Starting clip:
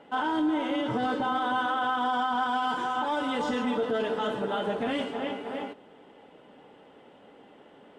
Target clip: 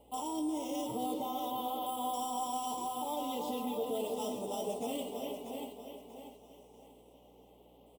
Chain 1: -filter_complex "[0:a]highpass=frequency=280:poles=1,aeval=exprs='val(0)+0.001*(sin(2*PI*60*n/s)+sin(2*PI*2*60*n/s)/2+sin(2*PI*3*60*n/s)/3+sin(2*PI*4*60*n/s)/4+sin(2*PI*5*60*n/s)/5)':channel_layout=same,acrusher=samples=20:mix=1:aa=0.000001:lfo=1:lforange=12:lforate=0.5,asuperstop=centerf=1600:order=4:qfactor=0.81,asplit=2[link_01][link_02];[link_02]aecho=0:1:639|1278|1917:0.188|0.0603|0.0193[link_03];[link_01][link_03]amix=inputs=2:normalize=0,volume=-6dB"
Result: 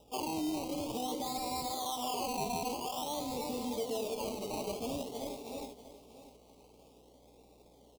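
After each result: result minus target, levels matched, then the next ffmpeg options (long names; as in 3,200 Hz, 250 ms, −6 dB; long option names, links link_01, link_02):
sample-and-hold swept by an LFO: distortion +18 dB; echo-to-direct −6.5 dB
-filter_complex "[0:a]highpass=frequency=280:poles=1,aeval=exprs='val(0)+0.001*(sin(2*PI*60*n/s)+sin(2*PI*2*60*n/s)/2+sin(2*PI*3*60*n/s)/3+sin(2*PI*4*60*n/s)/4+sin(2*PI*5*60*n/s)/5)':channel_layout=same,acrusher=samples=4:mix=1:aa=0.000001:lfo=1:lforange=2.4:lforate=0.5,asuperstop=centerf=1600:order=4:qfactor=0.81,asplit=2[link_01][link_02];[link_02]aecho=0:1:639|1278|1917:0.188|0.0603|0.0193[link_03];[link_01][link_03]amix=inputs=2:normalize=0,volume=-6dB"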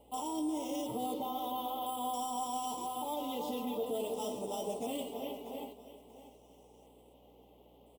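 echo-to-direct −6.5 dB
-filter_complex "[0:a]highpass=frequency=280:poles=1,aeval=exprs='val(0)+0.001*(sin(2*PI*60*n/s)+sin(2*PI*2*60*n/s)/2+sin(2*PI*3*60*n/s)/3+sin(2*PI*4*60*n/s)/4+sin(2*PI*5*60*n/s)/5)':channel_layout=same,acrusher=samples=4:mix=1:aa=0.000001:lfo=1:lforange=2.4:lforate=0.5,asuperstop=centerf=1600:order=4:qfactor=0.81,asplit=2[link_01][link_02];[link_02]aecho=0:1:639|1278|1917|2556:0.398|0.127|0.0408|0.013[link_03];[link_01][link_03]amix=inputs=2:normalize=0,volume=-6dB"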